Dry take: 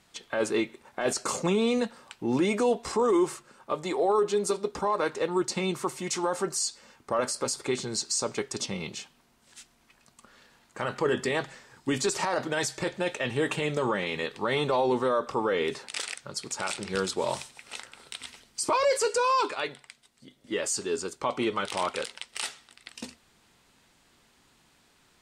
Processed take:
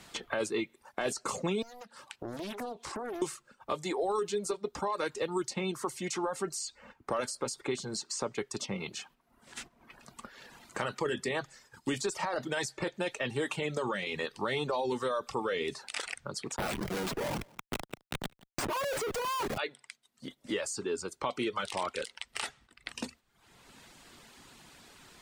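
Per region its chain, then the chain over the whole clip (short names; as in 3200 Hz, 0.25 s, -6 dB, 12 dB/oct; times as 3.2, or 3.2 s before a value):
1.62–3.22 low shelf 62 Hz -9 dB + compressor 2.5:1, threshold -46 dBFS + Doppler distortion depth 0.95 ms
16.56–19.58 Schmitt trigger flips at -33 dBFS + echo 0.174 s -18 dB
whole clip: gate -53 dBFS, range -7 dB; reverb removal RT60 0.61 s; three-band squash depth 70%; gain -4.5 dB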